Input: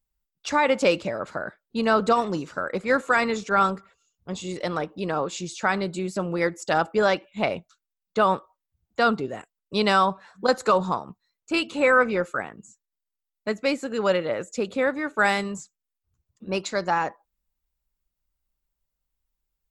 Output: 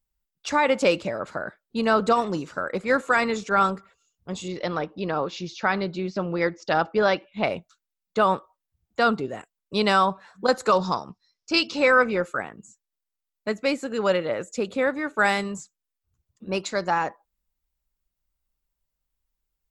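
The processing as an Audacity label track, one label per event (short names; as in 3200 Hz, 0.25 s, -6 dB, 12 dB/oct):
4.480000	7.450000	steep low-pass 5800 Hz 48 dB/oct
10.720000	12.020000	synth low-pass 5300 Hz, resonance Q 7.5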